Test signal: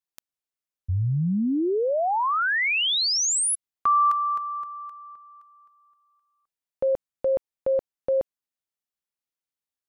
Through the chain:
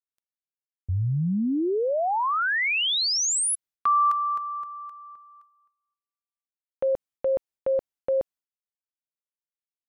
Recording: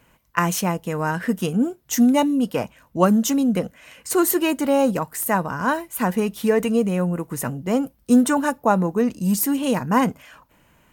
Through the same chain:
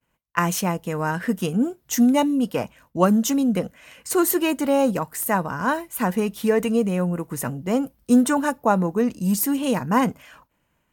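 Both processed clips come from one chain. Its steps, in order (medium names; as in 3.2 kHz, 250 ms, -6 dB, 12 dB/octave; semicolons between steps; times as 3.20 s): expander -48 dBFS; trim -1 dB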